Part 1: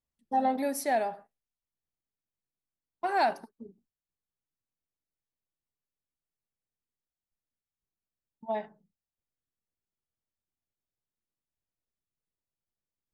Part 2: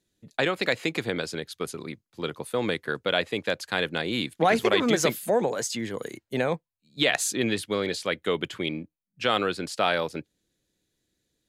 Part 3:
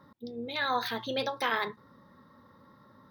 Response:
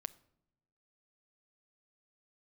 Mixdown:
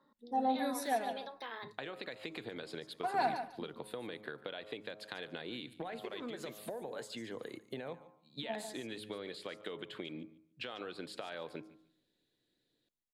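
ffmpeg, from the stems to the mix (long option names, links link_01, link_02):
-filter_complex "[0:a]aecho=1:1:4.1:0.58,volume=-8.5dB,asplit=2[link_01][link_02];[link_02]volume=-8dB[link_03];[1:a]bandreject=frequency=105.6:width_type=h:width=4,bandreject=frequency=211.2:width_type=h:width=4,bandreject=frequency=316.8:width_type=h:width=4,bandreject=frequency=422.4:width_type=h:width=4,bandreject=frequency=528:width_type=h:width=4,bandreject=frequency=633.6:width_type=h:width=4,bandreject=frequency=739.2:width_type=h:width=4,bandreject=frequency=844.8:width_type=h:width=4,bandreject=frequency=950.4:width_type=h:width=4,bandreject=frequency=1056:width_type=h:width=4,bandreject=frequency=1161.6:width_type=h:width=4,bandreject=frequency=1267.2:width_type=h:width=4,bandreject=frequency=1372.8:width_type=h:width=4,alimiter=limit=-16.5dB:level=0:latency=1:release=143,acompressor=threshold=-34dB:ratio=6,adelay=1400,volume=-4.5dB,asplit=3[link_04][link_05][link_06];[link_05]volume=-4.5dB[link_07];[link_06]volume=-20dB[link_08];[2:a]highpass=frequency=170:width=0.5412,highpass=frequency=170:width=1.3066,volume=-13.5dB,asplit=2[link_09][link_10];[link_10]volume=-8dB[link_11];[link_04][link_09]amix=inputs=2:normalize=0,highpass=130,equalizer=frequency=170:width_type=q:width=4:gain=-8,equalizer=frequency=1300:width_type=q:width=4:gain=-5,equalizer=frequency=2300:width_type=q:width=4:gain=-5,equalizer=frequency=4000:width_type=q:width=4:gain=5,lowpass=frequency=5900:width=0.5412,lowpass=frequency=5900:width=1.3066,acompressor=threshold=-44dB:ratio=6,volume=0dB[link_12];[3:a]atrim=start_sample=2205[link_13];[link_07][link_11]amix=inputs=2:normalize=0[link_14];[link_14][link_13]afir=irnorm=-1:irlink=0[link_15];[link_03][link_08]amix=inputs=2:normalize=0,aecho=0:1:145|290|435:1|0.17|0.0289[link_16];[link_01][link_12][link_15][link_16]amix=inputs=4:normalize=0"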